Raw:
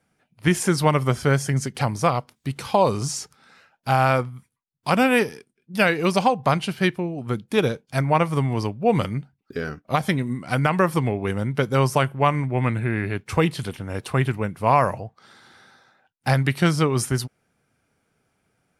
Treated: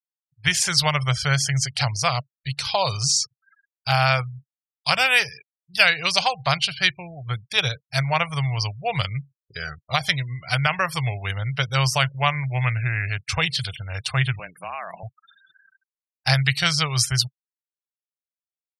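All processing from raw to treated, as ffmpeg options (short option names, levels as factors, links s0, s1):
-filter_complex "[0:a]asettb=1/sr,asplit=3[s0][s1][s2];[s0]atrim=end=14.394[s3];[s1]atrim=start=14.39:end=15.03,asetpts=PTS-STARTPTS,afade=t=in:d=0.004:c=qsin,afade=t=out:st=0.636:d=0.004:c=qsin,acompressor=threshold=0.0631:ratio=20:attack=3.2:release=140:knee=1:detection=peak,afreqshift=83,highshelf=f=11000:g=7.5[s4];[s2]atrim=start=15.026[s5];[s3][s4]acrossfade=d=0.004:c1=hsin:c2=qsin[s6];[s6][s5]acrossfade=d=0.004:c1=qsin:c2=hsin,equalizer=f=950:t=o:w=1.2:g=-6,afftfilt=real='re*gte(hypot(re,im),0.00891)':imag='im*gte(hypot(re,im),0.00891)':win_size=1024:overlap=0.75,firequalizer=gain_entry='entry(130,0);entry(230,-28);entry(660,0);entry(4400,13);entry(9900,-1)':delay=0.05:min_phase=1,volume=1.19"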